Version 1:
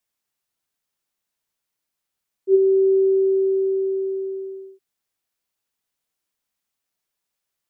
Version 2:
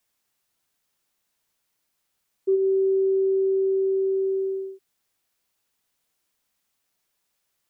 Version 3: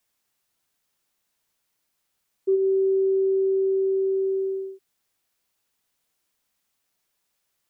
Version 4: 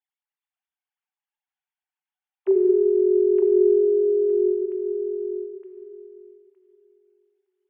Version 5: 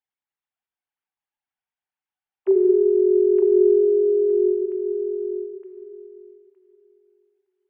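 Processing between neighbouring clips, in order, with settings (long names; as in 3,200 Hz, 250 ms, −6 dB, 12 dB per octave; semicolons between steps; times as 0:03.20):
downward compressor 4 to 1, threshold −28 dBFS, peak gain reduction 13.5 dB; level +6 dB
no processing that can be heard
three sine waves on the formant tracks; feedback echo with a high-pass in the loop 915 ms, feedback 20%, high-pass 440 Hz, level −4 dB; dense smooth reverb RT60 2.3 s, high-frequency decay 0.85×, pre-delay 0 ms, DRR 4.5 dB
high-frequency loss of the air 230 metres; level +2 dB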